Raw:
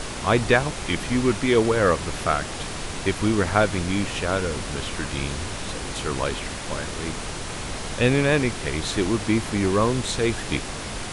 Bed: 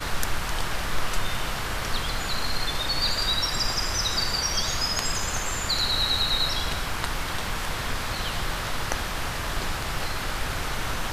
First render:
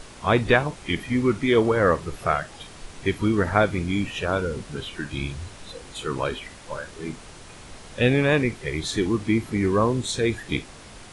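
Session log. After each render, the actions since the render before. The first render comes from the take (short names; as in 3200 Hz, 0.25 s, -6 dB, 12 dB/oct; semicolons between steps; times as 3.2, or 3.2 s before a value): noise print and reduce 12 dB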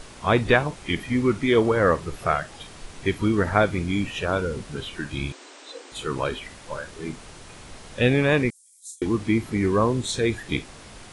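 5.32–5.92 brick-wall FIR band-pass 250–8900 Hz; 8.5–9.02 inverse Chebyshev high-pass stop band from 1400 Hz, stop band 80 dB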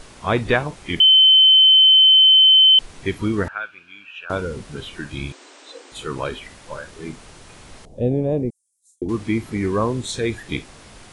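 1–2.79 bleep 3070 Hz -8 dBFS; 3.48–4.3 double band-pass 2000 Hz, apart 0.73 oct; 7.85–9.09 EQ curve 690 Hz 0 dB, 1400 Hz -30 dB, 6900 Hz -17 dB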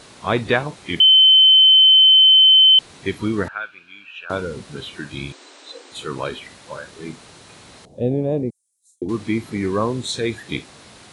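HPF 100 Hz 12 dB/oct; bell 4000 Hz +5.5 dB 0.27 oct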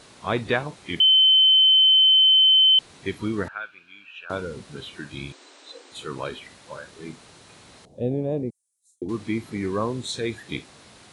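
gain -5 dB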